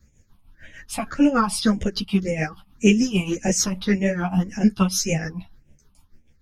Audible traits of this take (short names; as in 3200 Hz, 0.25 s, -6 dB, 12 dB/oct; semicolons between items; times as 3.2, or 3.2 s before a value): phasing stages 6, 1.8 Hz, lowest notch 440–1200 Hz; tremolo triangle 6.7 Hz, depth 75%; a shimmering, thickened sound